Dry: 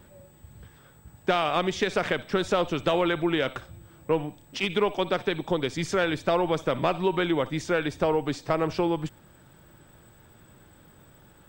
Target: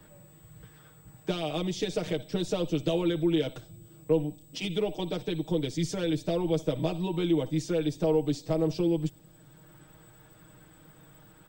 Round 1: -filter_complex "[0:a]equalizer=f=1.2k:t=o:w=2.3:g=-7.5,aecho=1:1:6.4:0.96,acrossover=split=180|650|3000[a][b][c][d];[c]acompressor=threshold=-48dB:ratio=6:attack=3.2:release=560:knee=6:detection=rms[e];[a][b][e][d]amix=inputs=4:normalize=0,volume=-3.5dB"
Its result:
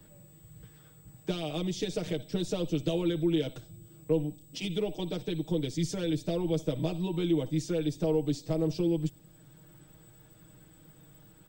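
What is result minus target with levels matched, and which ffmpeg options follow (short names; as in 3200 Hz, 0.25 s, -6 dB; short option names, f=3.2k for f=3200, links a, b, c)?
1000 Hz band -3.5 dB
-filter_complex "[0:a]aecho=1:1:6.4:0.96,acrossover=split=180|650|3000[a][b][c][d];[c]acompressor=threshold=-48dB:ratio=6:attack=3.2:release=560:knee=6:detection=rms[e];[a][b][e][d]amix=inputs=4:normalize=0,volume=-3.5dB"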